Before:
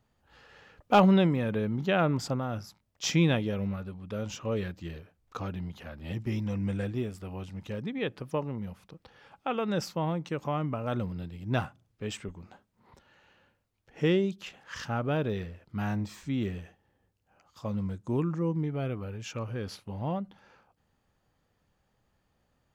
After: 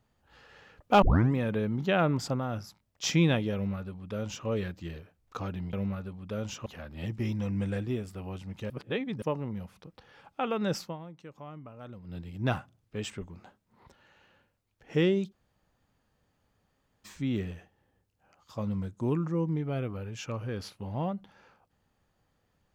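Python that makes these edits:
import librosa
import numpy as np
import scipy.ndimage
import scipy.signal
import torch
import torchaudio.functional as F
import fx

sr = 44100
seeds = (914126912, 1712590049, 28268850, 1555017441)

y = fx.edit(x, sr, fx.tape_start(start_s=1.02, length_s=0.31),
    fx.duplicate(start_s=3.54, length_s=0.93, to_s=5.73),
    fx.reverse_span(start_s=7.77, length_s=0.52),
    fx.fade_down_up(start_s=9.88, length_s=1.38, db=-14.0, fade_s=0.16),
    fx.room_tone_fill(start_s=14.39, length_s=1.73, crossfade_s=0.02), tone=tone)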